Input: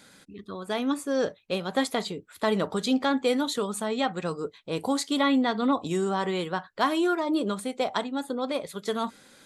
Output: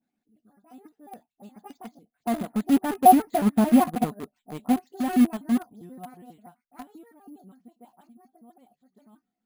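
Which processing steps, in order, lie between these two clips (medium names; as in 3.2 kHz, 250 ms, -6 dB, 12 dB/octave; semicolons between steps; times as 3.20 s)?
pitch shift switched off and on +6 st, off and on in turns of 76 ms; Doppler pass-by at 3.59 s, 24 m/s, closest 11 m; bass shelf 99 Hz +10.5 dB; low-pass that closes with the level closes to 1.6 kHz, closed at -25 dBFS; treble shelf 2.8 kHz -4.5 dB; small resonant body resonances 230/730 Hz, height 16 dB, ringing for 45 ms; phase dispersion highs, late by 45 ms, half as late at 2.5 kHz; in parallel at -7.5 dB: bit crusher 4-bit; on the sum: careless resampling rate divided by 4×, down filtered, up hold; upward expansion 1.5:1, over -39 dBFS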